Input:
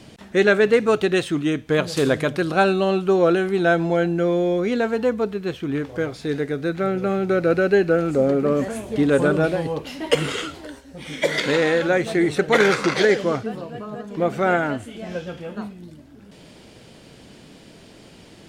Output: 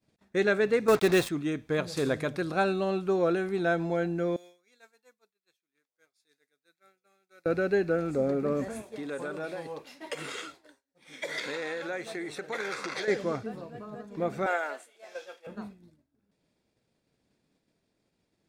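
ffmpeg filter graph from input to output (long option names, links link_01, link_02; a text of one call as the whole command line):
ffmpeg -i in.wav -filter_complex "[0:a]asettb=1/sr,asplit=3[link_01][link_02][link_03];[link_01]atrim=end=0.884[link_04];[link_02]atrim=start=0.88:end=1.29,asetpts=PTS-STARTPTS,afade=type=in:duration=0.004:curve=qsin,afade=type=out:start_time=0.406:duration=0.004:curve=qsin,acontrast=58,acrusher=bits=3:mix=0:aa=0.5[link_05];[link_03]atrim=start=1.286[link_06];[link_04][link_05]acrossfade=duration=0.004:curve1=hsin:curve2=qsin[link_07];[link_07][link_06]acrossfade=duration=0.004:curve1=qsin:curve2=hsin,asettb=1/sr,asplit=3[link_08][link_09][link_10];[link_08]atrim=end=4.364[link_11];[link_09]atrim=start=4.36:end=7.46,asetpts=PTS-STARTPTS,afade=type=in:duration=0.004:curve=qsin,afade=type=out:start_time=3.096:duration=0.004:curve=qsin,aderivative,bandreject=frequency=3000:width=9.3[link_12];[link_10]atrim=start=7.456[link_13];[link_11][link_12]acrossfade=duration=0.004:curve1=hsin:curve2=qsin[link_14];[link_14][link_13]acrossfade=duration=0.004:curve1=qsin:curve2=hsin,asettb=1/sr,asplit=3[link_15][link_16][link_17];[link_15]atrim=end=8.824[link_18];[link_16]atrim=start=8.82:end=13.08,asetpts=PTS-STARTPTS,afade=type=in:duration=0.004:curve=qsin,afade=type=out:start_time=4.256:duration=0.004:curve=qsin,acompressor=threshold=-18dB:ratio=5:attack=3.2:release=140:knee=1:detection=peak,highpass=frequency=570:poles=1[link_19];[link_17]atrim=start=13.076[link_20];[link_18][link_19]acrossfade=duration=0.004:curve1=hsin:curve2=qsin[link_21];[link_21][link_20]acrossfade=duration=0.004:curve1=qsin:curve2=hsin,asettb=1/sr,asplit=3[link_22][link_23][link_24];[link_22]atrim=end=14.464[link_25];[link_23]atrim=start=14.46:end=15.47,asetpts=PTS-STARTPTS,afade=type=in:duration=0.004:curve=qsin,afade=type=out:start_time=1.006:duration=0.004:curve=qsin,highpass=frequency=470:width=0.5412,highpass=frequency=470:width=1.3066,highshelf=frequency=3100:gain=6[link_26];[link_24]atrim=start=15.466[link_27];[link_25][link_26]acrossfade=duration=0.004:curve1=hsin:curve2=qsin[link_28];[link_28][link_27]acrossfade=duration=0.004:curve1=qsin:curve2=hsin,agate=range=-33dB:threshold=-32dB:ratio=3:detection=peak,bandreject=frequency=3000:width=7.1,volume=-9dB" out.wav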